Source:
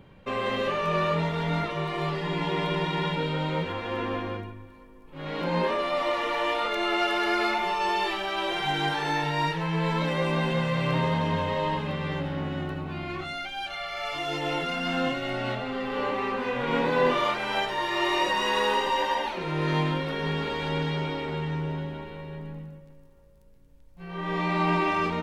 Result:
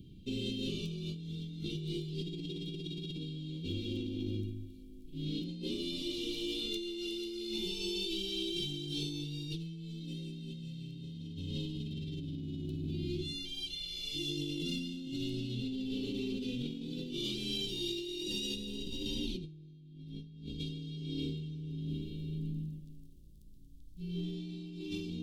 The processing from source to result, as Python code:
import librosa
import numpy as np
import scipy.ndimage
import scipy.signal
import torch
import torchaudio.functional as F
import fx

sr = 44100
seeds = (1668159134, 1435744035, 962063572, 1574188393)

y = fx.bass_treble(x, sr, bass_db=12, treble_db=-2, at=(18.54, 20.58), fade=0.02)
y = scipy.signal.sosfilt(scipy.signal.ellip(3, 1.0, 40, [330.0, 3400.0], 'bandstop', fs=sr, output='sos'), y)
y = fx.over_compress(y, sr, threshold_db=-37.0, ratio=-1.0)
y = y * 10.0 ** (-3.0 / 20.0)